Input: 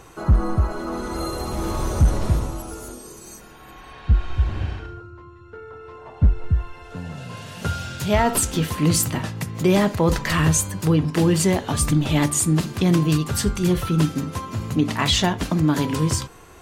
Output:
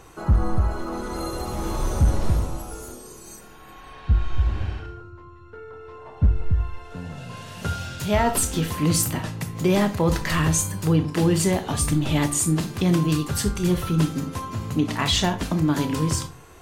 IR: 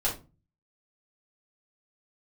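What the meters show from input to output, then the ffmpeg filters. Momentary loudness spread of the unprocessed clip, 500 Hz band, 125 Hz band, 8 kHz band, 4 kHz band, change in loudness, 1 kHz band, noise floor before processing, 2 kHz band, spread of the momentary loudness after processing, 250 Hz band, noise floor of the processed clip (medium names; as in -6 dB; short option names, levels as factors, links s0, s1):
17 LU, -2.0 dB, -2.0 dB, -1.5 dB, -2.0 dB, -2.0 dB, -1.5 dB, -44 dBFS, -2.5 dB, 17 LU, -2.0 dB, -45 dBFS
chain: -filter_complex "[0:a]asplit=2[s0][s1];[1:a]atrim=start_sample=2205,highshelf=f=5700:g=11,adelay=23[s2];[s1][s2]afir=irnorm=-1:irlink=0,volume=0.106[s3];[s0][s3]amix=inputs=2:normalize=0,volume=0.75"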